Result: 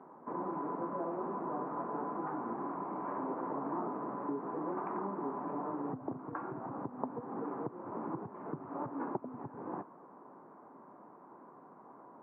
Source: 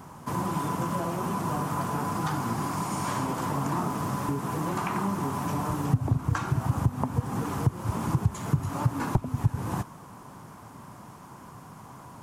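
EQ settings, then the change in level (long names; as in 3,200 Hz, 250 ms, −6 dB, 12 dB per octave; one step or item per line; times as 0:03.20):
Gaussian smoothing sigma 5.7 samples
four-pole ladder high-pass 260 Hz, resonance 25%
high-frequency loss of the air 490 metres
+2.5 dB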